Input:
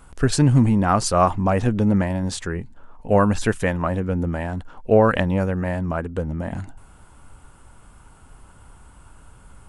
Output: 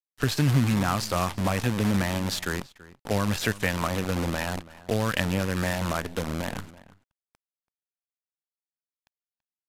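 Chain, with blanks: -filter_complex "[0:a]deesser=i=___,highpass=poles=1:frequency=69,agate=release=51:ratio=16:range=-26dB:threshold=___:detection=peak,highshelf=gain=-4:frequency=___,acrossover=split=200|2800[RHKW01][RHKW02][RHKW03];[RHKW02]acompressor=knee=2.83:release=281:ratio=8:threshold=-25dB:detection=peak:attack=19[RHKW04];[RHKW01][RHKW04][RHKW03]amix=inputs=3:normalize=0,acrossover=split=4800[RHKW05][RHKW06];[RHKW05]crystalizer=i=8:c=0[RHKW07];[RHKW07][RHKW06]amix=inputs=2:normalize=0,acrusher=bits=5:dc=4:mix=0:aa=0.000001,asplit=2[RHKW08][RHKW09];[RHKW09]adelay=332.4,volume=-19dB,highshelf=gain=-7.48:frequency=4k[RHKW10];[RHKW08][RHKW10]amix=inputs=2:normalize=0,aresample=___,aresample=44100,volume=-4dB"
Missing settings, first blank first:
0.55, -47dB, 4.2k, 32000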